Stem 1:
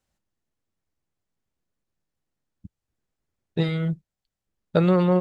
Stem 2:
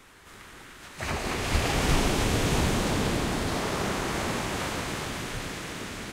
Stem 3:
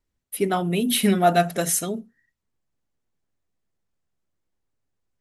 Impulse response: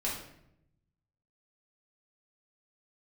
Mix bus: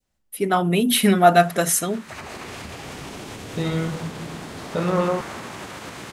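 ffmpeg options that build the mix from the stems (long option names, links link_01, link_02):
-filter_complex "[0:a]alimiter=limit=-16dB:level=0:latency=1,volume=-3dB,asplit=2[link_01][link_02];[link_02]volume=-5dB[link_03];[1:a]highpass=90,acompressor=threshold=-28dB:ratio=6,alimiter=level_in=0.5dB:limit=-24dB:level=0:latency=1:release=114,volume=-0.5dB,adelay=1100,volume=-1.5dB[link_04];[2:a]dynaudnorm=framelen=340:gausssize=3:maxgain=15.5dB,volume=-4.5dB[link_05];[3:a]atrim=start_sample=2205[link_06];[link_03][link_06]afir=irnorm=-1:irlink=0[link_07];[link_01][link_04][link_05][link_07]amix=inputs=4:normalize=0,adynamicequalizer=threshold=0.0178:dfrequency=1200:dqfactor=0.97:tfrequency=1200:tqfactor=0.97:attack=5:release=100:ratio=0.375:range=2.5:mode=boostabove:tftype=bell"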